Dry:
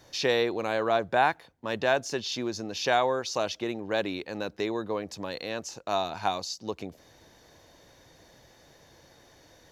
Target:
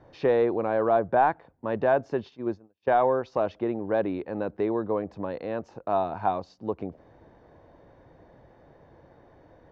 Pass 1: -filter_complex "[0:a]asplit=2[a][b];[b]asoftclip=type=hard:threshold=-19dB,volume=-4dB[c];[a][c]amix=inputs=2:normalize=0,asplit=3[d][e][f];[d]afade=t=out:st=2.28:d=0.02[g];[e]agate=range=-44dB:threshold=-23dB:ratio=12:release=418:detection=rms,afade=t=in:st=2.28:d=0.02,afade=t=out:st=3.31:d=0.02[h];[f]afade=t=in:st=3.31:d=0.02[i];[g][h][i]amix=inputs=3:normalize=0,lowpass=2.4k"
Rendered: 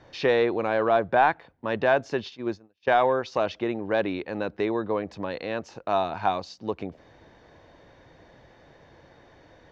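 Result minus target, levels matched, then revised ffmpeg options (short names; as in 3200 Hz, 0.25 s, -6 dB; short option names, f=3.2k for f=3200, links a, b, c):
2000 Hz band +6.0 dB
-filter_complex "[0:a]asplit=2[a][b];[b]asoftclip=type=hard:threshold=-19dB,volume=-4dB[c];[a][c]amix=inputs=2:normalize=0,asplit=3[d][e][f];[d]afade=t=out:st=2.28:d=0.02[g];[e]agate=range=-44dB:threshold=-23dB:ratio=12:release=418:detection=rms,afade=t=in:st=2.28:d=0.02,afade=t=out:st=3.31:d=0.02[h];[f]afade=t=in:st=3.31:d=0.02[i];[g][h][i]amix=inputs=3:normalize=0,lowpass=1.1k"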